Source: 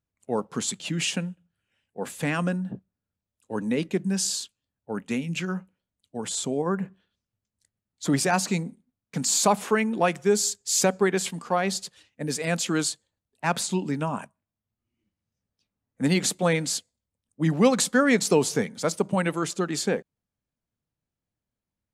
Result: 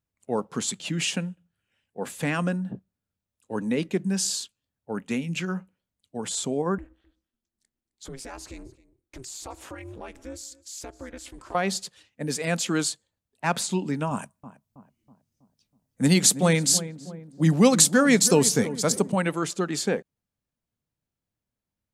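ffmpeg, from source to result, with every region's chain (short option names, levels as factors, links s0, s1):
-filter_complex "[0:a]asettb=1/sr,asplit=3[s0][s1][s2];[s0]atrim=end=6.784[s3];[s1]atrim=start=6.78:end=11.55,asetpts=PTS-STARTPTS,afade=t=in:d=0.004:c=qsin,afade=t=out:st=4.766:d=0.004:c=qsin,acompressor=threshold=0.01:ratio=2.5:attack=3.2:release=140:knee=1:detection=peak,aeval=exprs='val(0)*sin(2*PI*130*n/s)':c=same,aecho=1:1:262:0.0891,atrim=end_sample=210357[s4];[s2]atrim=start=11.546[s5];[s3][s4]acrossfade=d=0.004:c1=hsin:c2=qsin[s6];[s6][s5]acrossfade=d=0.004:c1=qsin:c2=hsin,asettb=1/sr,asplit=3[s7][s8][s9];[s7]atrim=end=14.114[s10];[s8]atrim=start=14.11:end=19.12,asetpts=PTS-STARTPTS,afade=t=in:d=0.004:c=qsin,afade=t=out:st=5.006:d=0.004:c=qsin,bass=f=250:g=5,treble=f=4000:g=9,asplit=2[s11][s12];[s12]adelay=323,lowpass=f=1000:p=1,volume=0.224,asplit=2[s13][s14];[s14]adelay=323,lowpass=f=1000:p=1,volume=0.53,asplit=2[s15][s16];[s16]adelay=323,lowpass=f=1000:p=1,volume=0.53,asplit=2[s17][s18];[s18]adelay=323,lowpass=f=1000:p=1,volume=0.53,asplit=2[s19][s20];[s20]adelay=323,lowpass=f=1000:p=1,volume=0.53[s21];[s11][s13][s15][s17][s19][s21]amix=inputs=6:normalize=0,atrim=end_sample=220941[s22];[s9]atrim=start=19.116[s23];[s10][s22]acrossfade=d=0.004:c1=hsin:c2=qsin[s24];[s24][s23]acrossfade=d=0.004:c1=qsin:c2=hsin"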